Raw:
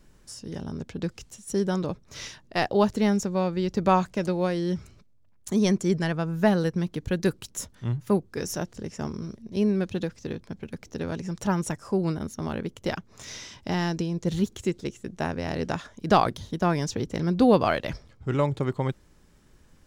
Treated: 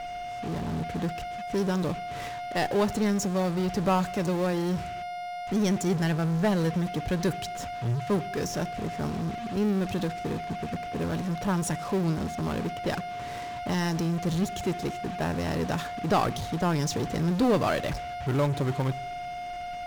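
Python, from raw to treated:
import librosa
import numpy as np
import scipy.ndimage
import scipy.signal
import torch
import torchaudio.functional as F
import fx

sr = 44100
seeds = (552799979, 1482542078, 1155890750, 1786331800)

p1 = fx.env_lowpass(x, sr, base_hz=800.0, full_db=-23.0)
p2 = fx.leveller(p1, sr, passes=1)
p3 = p2 + 10.0 ** (-40.0 / 20.0) * np.sin(2.0 * np.pi * 710.0 * np.arange(len(p2)) / sr)
p4 = fx.fuzz(p3, sr, gain_db=47.0, gate_db=-45.0)
p5 = p3 + (p4 * 10.0 ** (-11.5 / 20.0))
p6 = fx.room_shoebox(p5, sr, seeds[0], volume_m3=3400.0, walls='furnished', distance_m=0.37)
y = p6 * 10.0 ** (-8.5 / 20.0)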